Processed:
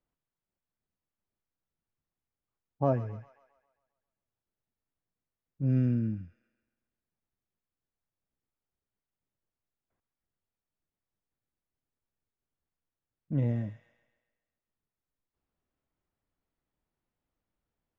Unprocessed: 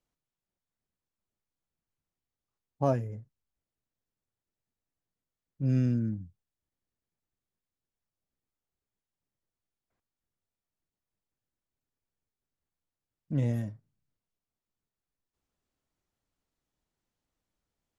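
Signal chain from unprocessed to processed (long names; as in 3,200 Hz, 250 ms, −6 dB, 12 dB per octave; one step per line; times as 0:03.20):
Bessel low-pass filter 2,000 Hz, order 2
delay with a high-pass on its return 134 ms, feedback 52%, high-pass 1,500 Hz, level −7.5 dB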